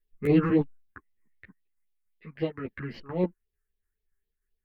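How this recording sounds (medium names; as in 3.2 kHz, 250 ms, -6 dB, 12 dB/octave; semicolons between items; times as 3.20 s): phasing stages 4, 3.8 Hz, lowest notch 590–1400 Hz; tremolo saw down 3.4 Hz, depth 45%; a shimmering, thickened sound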